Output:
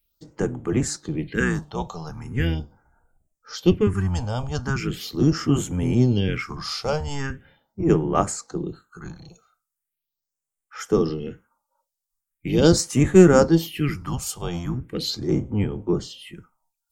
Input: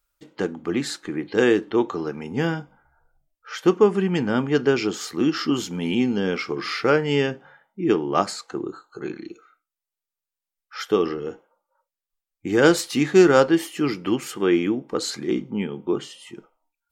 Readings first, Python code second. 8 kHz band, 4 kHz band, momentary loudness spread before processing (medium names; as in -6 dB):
+3.5 dB, -1.0 dB, 16 LU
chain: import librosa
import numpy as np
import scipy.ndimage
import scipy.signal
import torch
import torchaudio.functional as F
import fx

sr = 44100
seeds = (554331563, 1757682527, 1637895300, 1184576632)

y = fx.octave_divider(x, sr, octaves=1, level_db=1.0)
y = fx.high_shelf(y, sr, hz=2500.0, db=8.0)
y = fx.phaser_stages(y, sr, stages=4, low_hz=300.0, high_hz=4500.0, hz=0.4, feedback_pct=35)
y = y * librosa.db_to_amplitude(-1.5)